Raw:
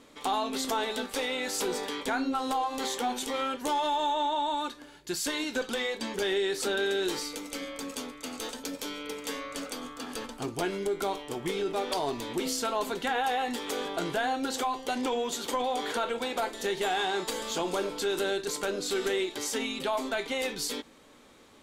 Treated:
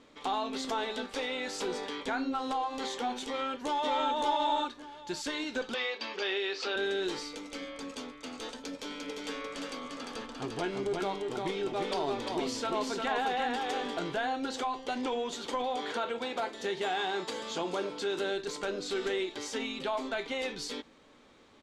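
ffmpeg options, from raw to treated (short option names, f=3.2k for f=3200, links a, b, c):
-filter_complex "[0:a]asplit=2[a][b];[b]afade=t=in:st=3.26:d=0.01,afade=t=out:st=4.07:d=0.01,aecho=0:1:570|1140|1710:0.944061|0.141609|0.0212414[c];[a][c]amix=inputs=2:normalize=0,asettb=1/sr,asplit=3[d][e][f];[d]atrim=end=5.744[g];[e]atrim=start=5.74:end=6.76,asetpts=PTS-STARTPTS,afade=t=in:d=0.004:c=qsin,afade=t=out:st=1.016:d=0.004:c=qsin,highpass=410,equalizer=f=1.2k:t=q:w=4:g=5,equalizer=f=2.6k:t=q:w=4:g=8,equalizer=f=4.8k:t=q:w=4:g=6,lowpass=f=6k:w=0.5412,lowpass=f=6k:w=1.3066[h];[f]atrim=start=6.756[i];[g][h]acrossfade=d=0.004:c1=hsin:c2=qsin[j];[j][i]acrossfade=d=0.004:c1=qsin:c2=hsin,asplit=3[k][l][m];[k]afade=t=out:st=8.89:d=0.02[n];[l]aecho=1:1:349:0.668,afade=t=in:st=8.89:d=0.02,afade=t=out:st=13.98:d=0.02[o];[m]afade=t=in:st=13.98:d=0.02[p];[n][o][p]amix=inputs=3:normalize=0,asettb=1/sr,asplit=3[q][r][s];[q]atrim=end=15.764[t];[r]atrim=start=15.76:end=18.34,asetpts=PTS-STARTPTS,afade=t=in:d=0.004:c=qsin,afade=t=out:st=2.576:d=0.004:c=qsin,highpass=65[u];[s]atrim=start=18.336[v];[t][u]acrossfade=d=0.004:c1=hsin:c2=qsin[w];[w][v]acrossfade=d=0.004:c1=qsin:c2=hsin,lowpass=5.6k,volume=-3dB"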